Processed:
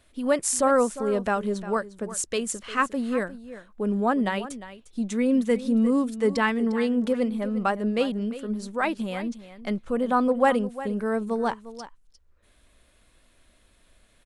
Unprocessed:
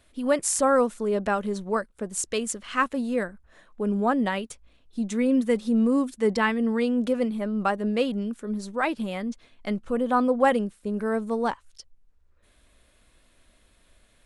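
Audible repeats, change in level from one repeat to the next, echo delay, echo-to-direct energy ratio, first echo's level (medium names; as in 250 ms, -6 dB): 1, no regular repeats, 353 ms, -14.5 dB, -14.5 dB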